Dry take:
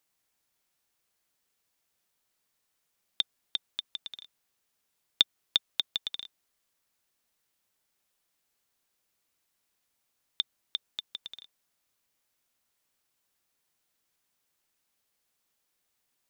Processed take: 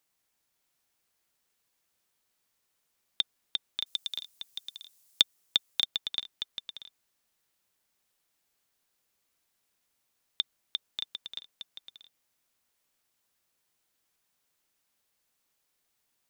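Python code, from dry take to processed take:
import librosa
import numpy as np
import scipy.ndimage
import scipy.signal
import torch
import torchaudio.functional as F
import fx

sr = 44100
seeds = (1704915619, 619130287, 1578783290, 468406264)

y = fx.bass_treble(x, sr, bass_db=1, treble_db=14, at=(3.86, 5.21))
y = y + 10.0 ** (-7.0 / 20.0) * np.pad(y, (int(623 * sr / 1000.0), 0))[:len(y)]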